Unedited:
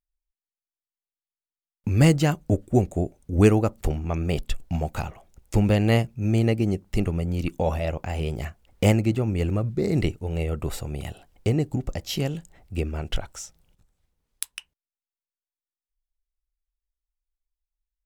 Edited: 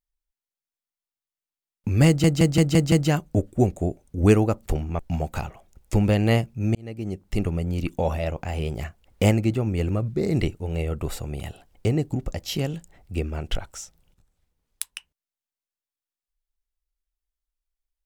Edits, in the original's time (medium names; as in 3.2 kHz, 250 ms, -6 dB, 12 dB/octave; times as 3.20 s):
2.07 s: stutter 0.17 s, 6 plays
4.14–4.60 s: delete
6.36–7.05 s: fade in linear